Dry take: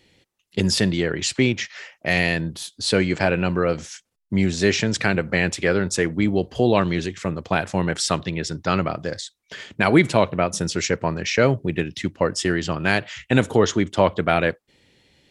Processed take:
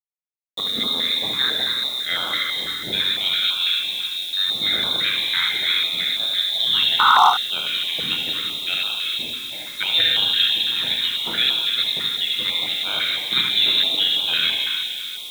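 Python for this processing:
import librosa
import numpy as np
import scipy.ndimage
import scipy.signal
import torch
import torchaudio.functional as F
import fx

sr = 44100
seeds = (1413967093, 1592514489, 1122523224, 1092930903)

p1 = fx.room_shoebox(x, sr, seeds[0], volume_m3=130.0, walls='hard', distance_m=0.52)
p2 = fx.freq_invert(p1, sr, carrier_hz=3900)
p3 = scipy.signal.sosfilt(scipy.signal.butter(2, 130.0, 'highpass', fs=sr, output='sos'), p2)
p4 = fx.tilt_eq(p3, sr, slope=-2.0)
p5 = fx.echo_feedback(p4, sr, ms=169, feedback_pct=52, wet_db=-15.0)
p6 = fx.spec_paint(p5, sr, seeds[1], shape='noise', start_s=6.99, length_s=0.31, low_hz=710.0, high_hz=1500.0, level_db=-8.0)
p7 = fx.quant_dither(p6, sr, seeds[2], bits=6, dither='none')
p8 = fx.low_shelf(p7, sr, hz=170.0, db=-5.5)
p9 = p8 + fx.echo_single(p8, sr, ms=74, db=-5.0, dry=0)
p10 = fx.filter_held_notch(p9, sr, hz=6.0, low_hz=620.0, high_hz=1900.0)
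y = p10 * librosa.db_to_amplitude(-2.0)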